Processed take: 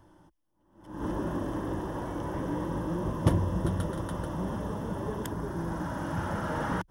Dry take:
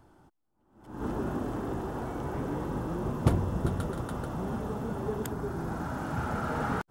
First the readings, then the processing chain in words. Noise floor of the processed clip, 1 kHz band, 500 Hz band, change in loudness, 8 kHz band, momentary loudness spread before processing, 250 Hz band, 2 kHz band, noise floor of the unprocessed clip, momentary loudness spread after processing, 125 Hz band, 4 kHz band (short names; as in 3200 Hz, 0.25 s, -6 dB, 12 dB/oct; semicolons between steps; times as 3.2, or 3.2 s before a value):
-68 dBFS, 0.0 dB, 0.0 dB, +0.5 dB, +1.0 dB, 6 LU, +1.0 dB, +0.5 dB, -72 dBFS, 6 LU, +0.5 dB, +2.0 dB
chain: ripple EQ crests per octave 1.2, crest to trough 8 dB